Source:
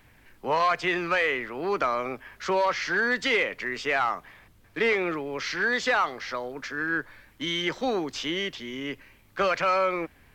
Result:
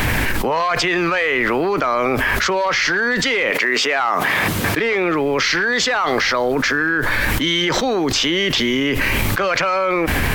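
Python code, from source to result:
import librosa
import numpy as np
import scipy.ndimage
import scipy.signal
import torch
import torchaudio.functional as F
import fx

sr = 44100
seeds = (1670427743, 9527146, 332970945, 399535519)

y = fx.highpass(x, sr, hz=fx.line((3.5, 320.0), (4.78, 110.0)), slope=12, at=(3.5, 4.78), fade=0.02)
y = fx.env_flatten(y, sr, amount_pct=100)
y = y * 10.0 ** (3.0 / 20.0)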